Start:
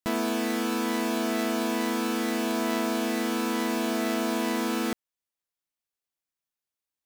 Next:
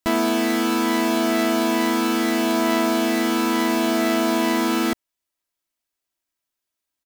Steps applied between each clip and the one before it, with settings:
comb filter 3.1 ms, depth 43%
level +6 dB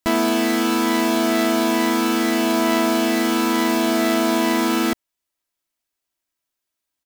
floating-point word with a short mantissa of 2 bits
level +1.5 dB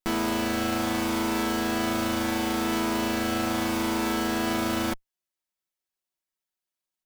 lower of the sound and its delayed copy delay 5.4 ms
level −6.5 dB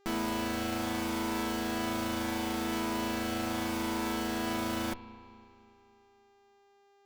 hum with harmonics 400 Hz, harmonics 19, −59 dBFS −7 dB per octave
spring reverb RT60 2.7 s, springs 32/36 ms, chirp 25 ms, DRR 12.5 dB
level −6.5 dB

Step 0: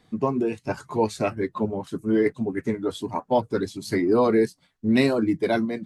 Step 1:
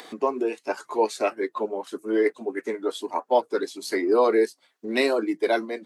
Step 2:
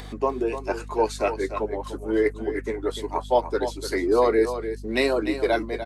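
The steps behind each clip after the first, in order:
high-pass filter 340 Hz 24 dB per octave; upward compression, threshold −32 dBFS; level +1.5 dB
mains hum 50 Hz, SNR 14 dB; single-tap delay 297 ms −10 dB

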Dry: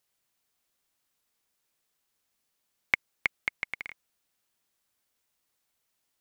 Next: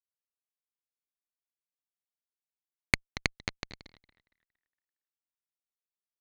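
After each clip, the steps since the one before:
echo with shifted repeats 231 ms, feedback 46%, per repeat −79 Hz, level −8.5 dB
harmonic generator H 3 −19 dB, 4 −12 dB, 7 −21 dB, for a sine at −4.5 dBFS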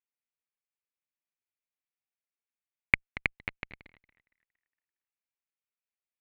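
high shelf with overshoot 3,600 Hz −13.5 dB, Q 3
in parallel at −1 dB: output level in coarse steps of 9 dB
on the sum: level −7.5 dB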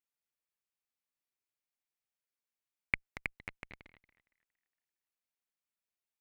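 transient designer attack −8 dB, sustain 0 dB
level −1 dB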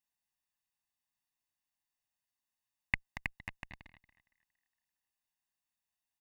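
comb filter 1.1 ms, depth 93%
level −1 dB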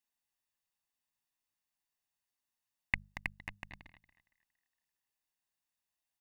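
mains-hum notches 50/100/150/200 Hz

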